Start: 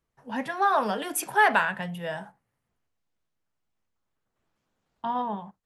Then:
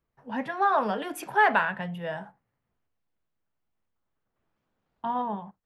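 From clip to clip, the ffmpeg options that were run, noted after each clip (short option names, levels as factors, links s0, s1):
-af "equalizer=f=9100:w=0.55:g=-13.5"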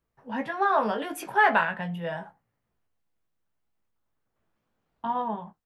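-filter_complex "[0:a]asplit=2[s0][s1];[s1]adelay=18,volume=0.447[s2];[s0][s2]amix=inputs=2:normalize=0"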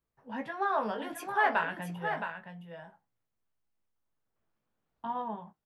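-af "aecho=1:1:668:0.422,volume=0.473"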